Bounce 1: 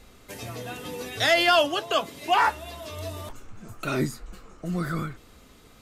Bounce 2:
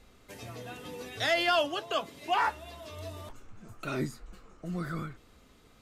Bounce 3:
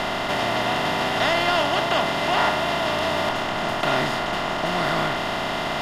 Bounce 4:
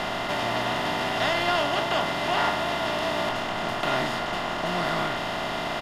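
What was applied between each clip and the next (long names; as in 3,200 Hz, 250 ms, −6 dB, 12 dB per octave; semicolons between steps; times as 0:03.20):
high-shelf EQ 7,800 Hz −5.5 dB; level −6.5 dB
compressor on every frequency bin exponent 0.2
double-tracking delay 17 ms −10.5 dB; level −4 dB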